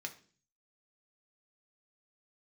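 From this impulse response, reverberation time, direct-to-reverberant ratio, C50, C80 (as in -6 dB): 0.45 s, 3.0 dB, 14.5 dB, 19.0 dB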